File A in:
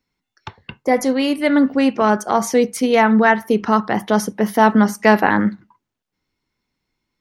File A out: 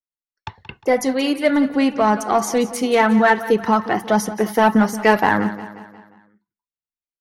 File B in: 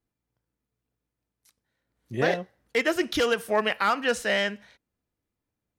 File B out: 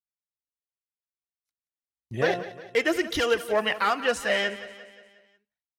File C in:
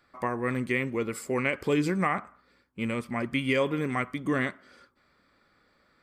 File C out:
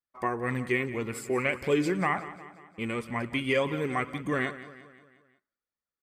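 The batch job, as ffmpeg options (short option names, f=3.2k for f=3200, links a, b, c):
-filter_complex "[0:a]agate=range=-33dB:threshold=-44dB:ratio=3:detection=peak,asplit=2[a][b];[b]asoftclip=type=hard:threshold=-9dB,volume=-6dB[c];[a][c]amix=inputs=2:normalize=0,flanger=delay=1:depth=1.8:regen=38:speed=1.9:shape=sinusoidal,aecho=1:1:178|356|534|712|890:0.178|0.0925|0.0481|0.025|0.013"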